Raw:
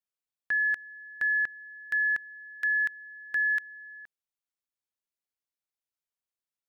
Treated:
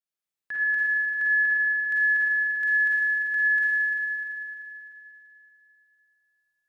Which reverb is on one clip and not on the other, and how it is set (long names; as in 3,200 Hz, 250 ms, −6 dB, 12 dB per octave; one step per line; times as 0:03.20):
four-comb reverb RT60 3.1 s, DRR −8.5 dB
level −6 dB